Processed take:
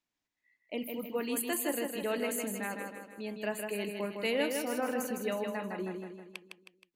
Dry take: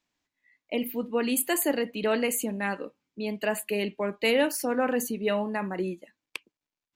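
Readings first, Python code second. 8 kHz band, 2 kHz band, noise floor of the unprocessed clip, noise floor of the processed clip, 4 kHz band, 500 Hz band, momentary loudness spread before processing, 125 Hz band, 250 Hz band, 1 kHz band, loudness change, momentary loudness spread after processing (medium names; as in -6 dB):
-6.5 dB, -6.5 dB, under -85 dBFS, under -85 dBFS, -6.5 dB, -6.5 dB, 13 LU, no reading, -6.5 dB, -6.5 dB, -6.5 dB, 12 LU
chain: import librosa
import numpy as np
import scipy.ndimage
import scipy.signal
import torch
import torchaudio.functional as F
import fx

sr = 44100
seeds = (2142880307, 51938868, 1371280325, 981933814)

y = fx.echo_feedback(x, sr, ms=158, feedback_pct=49, wet_db=-5)
y = y * librosa.db_to_amplitude(-8.0)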